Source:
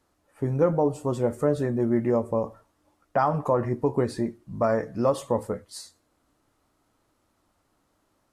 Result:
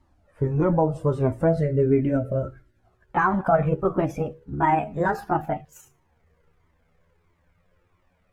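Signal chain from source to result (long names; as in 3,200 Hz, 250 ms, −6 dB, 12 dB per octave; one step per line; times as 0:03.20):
pitch glide at a constant tempo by +10.5 semitones starting unshifted
gain on a spectral selection 0:01.61–0:02.79, 650–1,300 Hz −18 dB
low-pass filter 2,400 Hz 6 dB per octave
low-shelf EQ 170 Hz +11 dB
flanger whose copies keep moving one way falling 1.5 Hz
level +7 dB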